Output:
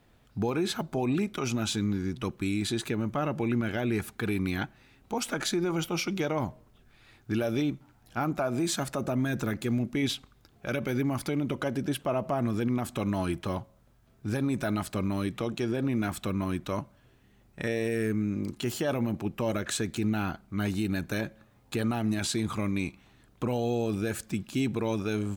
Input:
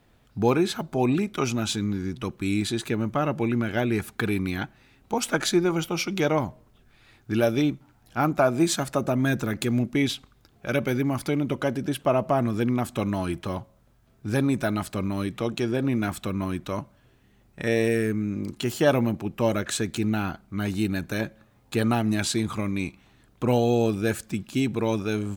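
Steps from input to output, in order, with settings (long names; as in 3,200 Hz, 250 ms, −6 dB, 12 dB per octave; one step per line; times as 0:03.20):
brickwall limiter −18.5 dBFS, peak gain reduction 9.5 dB
level −1.5 dB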